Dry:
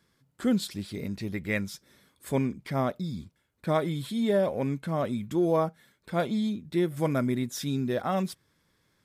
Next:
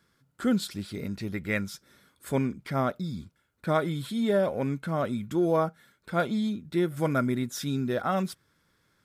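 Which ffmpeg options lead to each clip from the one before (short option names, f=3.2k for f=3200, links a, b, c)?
-af "equalizer=f=1.4k:w=5.3:g=8"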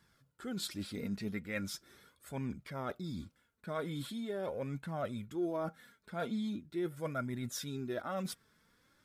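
-af "areverse,acompressor=threshold=-34dB:ratio=6,areverse,flanger=delay=1:depth=3.8:regen=38:speed=0.41:shape=triangular,volume=3dB"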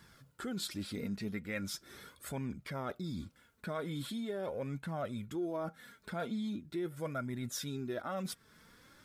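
-af "acompressor=threshold=-53dB:ratio=2,volume=9.5dB"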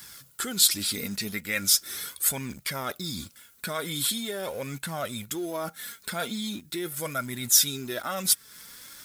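-filter_complex "[0:a]crystalizer=i=10:c=0,asplit=2[a][b];[b]acrusher=bits=6:mix=0:aa=0.000001,volume=-9.5dB[c];[a][c]amix=inputs=2:normalize=0"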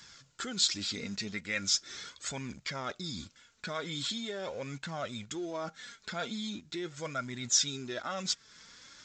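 -af "volume=-5dB" -ar 16000 -c:a pcm_mulaw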